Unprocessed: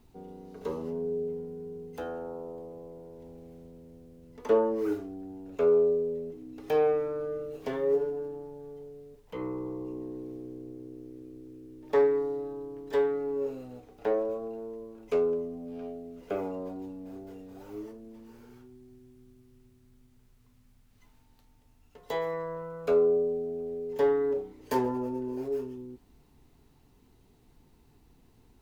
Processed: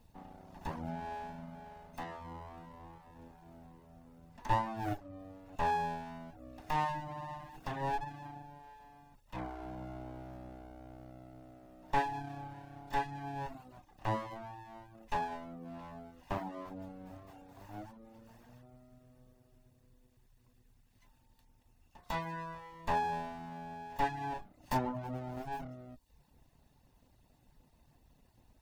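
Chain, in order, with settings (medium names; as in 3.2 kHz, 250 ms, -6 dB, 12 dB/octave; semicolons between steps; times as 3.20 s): comb filter that takes the minimum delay 1.1 ms; reverb removal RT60 0.61 s; trim -2 dB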